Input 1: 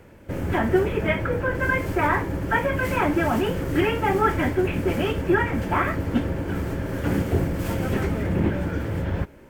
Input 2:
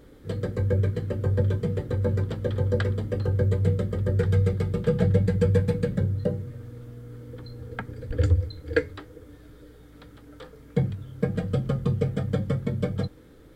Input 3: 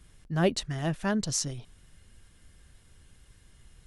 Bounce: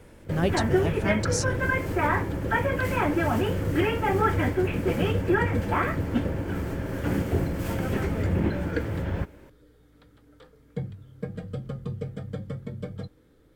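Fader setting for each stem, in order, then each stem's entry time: -3.0, -8.5, -1.0 dB; 0.00, 0.00, 0.00 s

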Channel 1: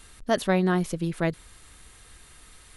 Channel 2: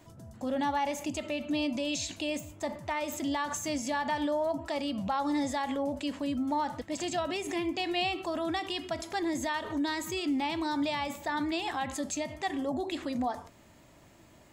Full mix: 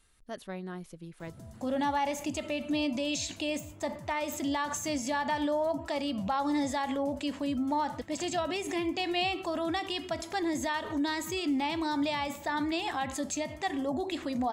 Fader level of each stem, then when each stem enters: -17.0, +0.5 dB; 0.00, 1.20 s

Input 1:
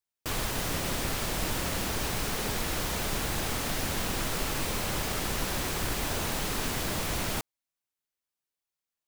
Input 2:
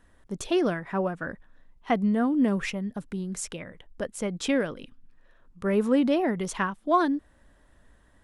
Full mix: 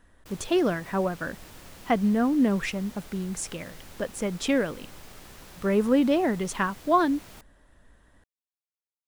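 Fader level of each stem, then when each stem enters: -16.5, +1.0 dB; 0.00, 0.00 s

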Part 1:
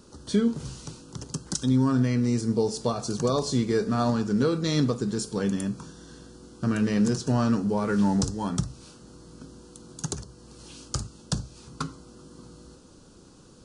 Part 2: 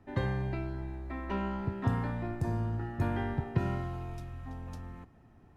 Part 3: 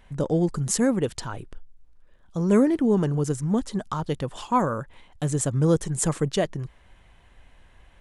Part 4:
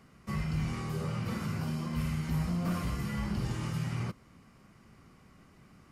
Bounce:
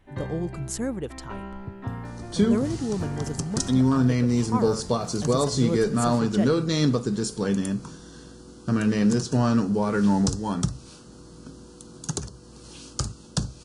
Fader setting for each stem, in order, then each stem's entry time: +2.0, -3.0, -7.5, -12.5 dB; 2.05, 0.00, 0.00, 2.35 s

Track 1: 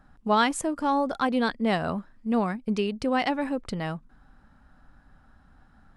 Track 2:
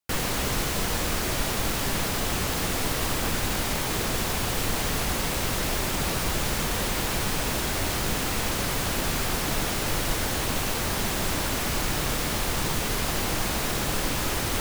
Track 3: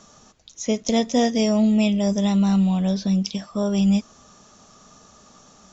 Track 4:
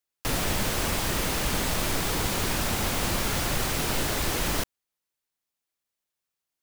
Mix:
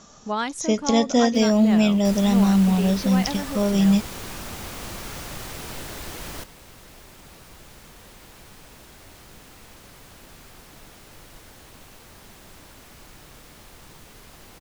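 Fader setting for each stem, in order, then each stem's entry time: -4.5, -20.0, +1.0, -8.5 dB; 0.00, 1.25, 0.00, 1.80 s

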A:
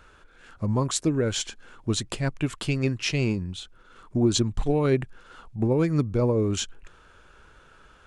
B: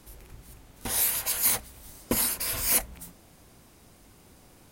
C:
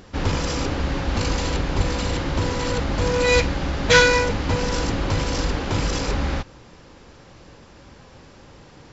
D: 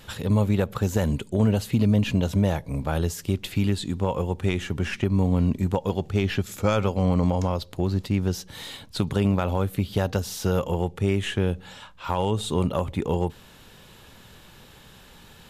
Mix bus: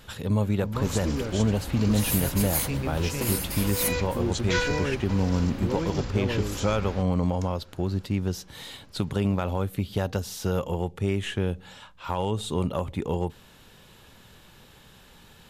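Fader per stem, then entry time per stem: -8.0, -4.0, -12.5, -3.0 dB; 0.00, 1.10, 0.60, 0.00 s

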